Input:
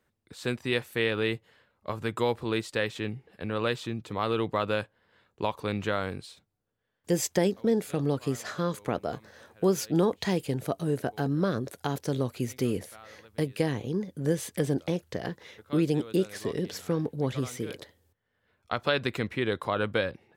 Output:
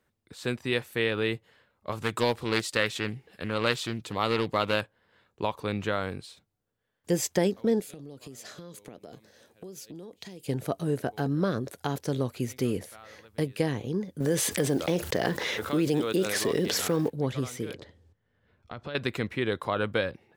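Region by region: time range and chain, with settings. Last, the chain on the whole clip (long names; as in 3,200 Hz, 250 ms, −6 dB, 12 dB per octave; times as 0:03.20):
0:01.92–0:04.81: high-shelf EQ 2,300 Hz +9.5 dB + highs frequency-modulated by the lows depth 0.31 ms
0:07.80–0:10.48: high-pass filter 230 Hz 6 dB per octave + parametric band 1,200 Hz −11.5 dB 1.8 octaves + downward compressor 12 to 1, threshold −39 dBFS
0:14.20–0:17.10: one scale factor per block 7 bits + low-shelf EQ 130 Hz −12 dB + envelope flattener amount 70%
0:17.74–0:18.95: low-shelf EQ 350 Hz +10 dB + downward compressor 2.5 to 1, threshold −41 dBFS + low-pass filter 6,000 Hz
whole clip: no processing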